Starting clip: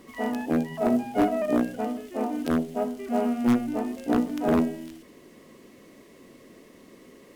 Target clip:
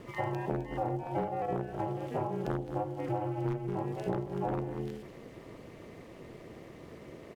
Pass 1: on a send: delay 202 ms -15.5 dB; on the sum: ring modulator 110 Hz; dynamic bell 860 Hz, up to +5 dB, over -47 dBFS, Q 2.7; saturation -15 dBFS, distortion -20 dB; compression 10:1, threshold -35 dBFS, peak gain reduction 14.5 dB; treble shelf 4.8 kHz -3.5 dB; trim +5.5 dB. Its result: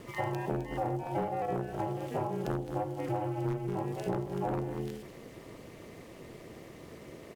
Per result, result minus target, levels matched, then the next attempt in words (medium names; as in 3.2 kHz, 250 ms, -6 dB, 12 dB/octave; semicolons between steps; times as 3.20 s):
saturation: distortion +19 dB; 8 kHz band +6.0 dB
on a send: delay 202 ms -15.5 dB; on the sum: ring modulator 110 Hz; dynamic bell 860 Hz, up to +5 dB, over -47 dBFS, Q 2.7; saturation -4.5 dBFS, distortion -39 dB; compression 10:1, threshold -35 dBFS, peak gain reduction 16.5 dB; treble shelf 4.8 kHz -3.5 dB; trim +5.5 dB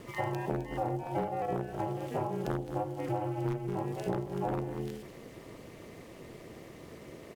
8 kHz band +6.5 dB
on a send: delay 202 ms -15.5 dB; on the sum: ring modulator 110 Hz; dynamic bell 860 Hz, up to +5 dB, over -47 dBFS, Q 2.7; saturation -4.5 dBFS, distortion -39 dB; compression 10:1, threshold -35 dBFS, peak gain reduction 16.5 dB; treble shelf 4.8 kHz -12.5 dB; trim +5.5 dB